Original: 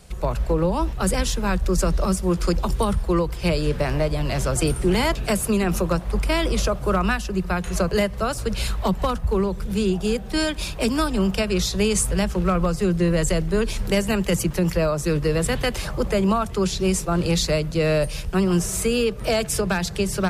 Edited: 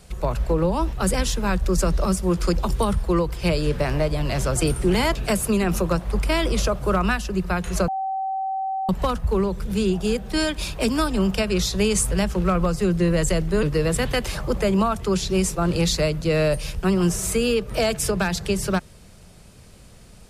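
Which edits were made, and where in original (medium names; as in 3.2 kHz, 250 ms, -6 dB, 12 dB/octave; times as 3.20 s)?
7.88–8.89 s: bleep 769 Hz -23 dBFS
13.63–15.13 s: delete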